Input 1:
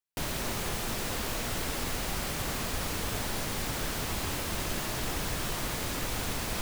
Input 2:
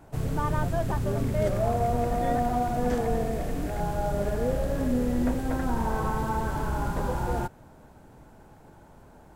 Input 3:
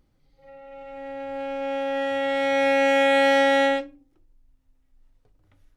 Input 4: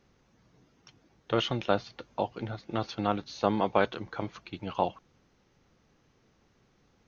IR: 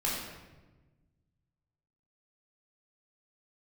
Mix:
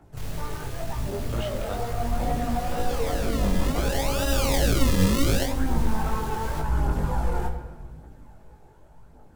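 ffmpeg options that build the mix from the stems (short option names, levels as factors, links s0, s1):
-filter_complex "[0:a]volume=56.2,asoftclip=hard,volume=0.0178,volume=0.794[s0];[1:a]asoftclip=type=tanh:threshold=0.0562,dynaudnorm=f=270:g=13:m=2.11,aphaser=in_gain=1:out_gain=1:delay=2.7:decay=0.52:speed=0.87:type=triangular,volume=0.501,asplit=2[s1][s2];[s2]volume=0.376[s3];[2:a]acrusher=samples=40:mix=1:aa=0.000001:lfo=1:lforange=40:lforate=0.68,adelay=1700,volume=1.33[s4];[3:a]volume=0.596[s5];[4:a]atrim=start_sample=2205[s6];[s3][s6]afir=irnorm=-1:irlink=0[s7];[s0][s1][s4][s5][s7]amix=inputs=5:normalize=0,acrossover=split=180|3000[s8][s9][s10];[s9]acompressor=threshold=0.0631:ratio=3[s11];[s8][s11][s10]amix=inputs=3:normalize=0,flanger=delay=17.5:depth=4.9:speed=2.1"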